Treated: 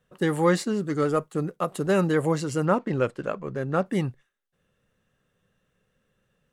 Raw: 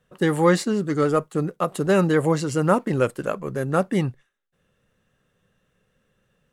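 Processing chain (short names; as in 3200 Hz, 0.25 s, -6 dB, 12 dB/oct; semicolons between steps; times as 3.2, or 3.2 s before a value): 2.65–3.86 LPF 5000 Hz 12 dB/oct; gain -3.5 dB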